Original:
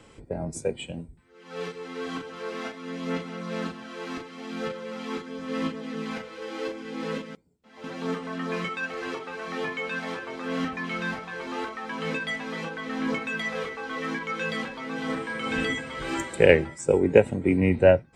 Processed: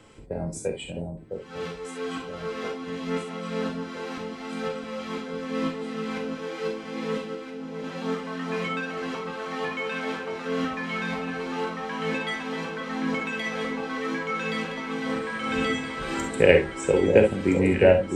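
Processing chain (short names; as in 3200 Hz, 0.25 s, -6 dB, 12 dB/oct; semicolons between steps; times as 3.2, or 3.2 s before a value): echo with dull and thin repeats by turns 0.66 s, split 920 Hz, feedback 74%, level -6 dB; non-linear reverb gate 80 ms rising, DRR 5 dB; gain -1 dB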